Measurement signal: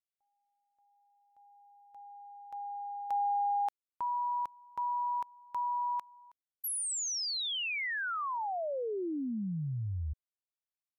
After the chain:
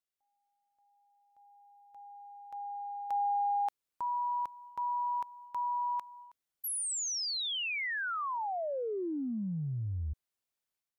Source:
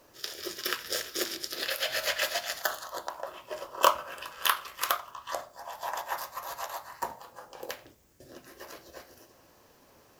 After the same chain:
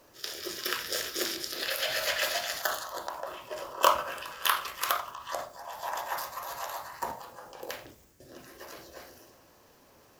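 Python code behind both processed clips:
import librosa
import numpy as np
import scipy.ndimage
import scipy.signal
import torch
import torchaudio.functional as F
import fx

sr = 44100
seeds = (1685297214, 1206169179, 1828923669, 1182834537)

y = fx.transient(x, sr, attack_db=-1, sustain_db=6)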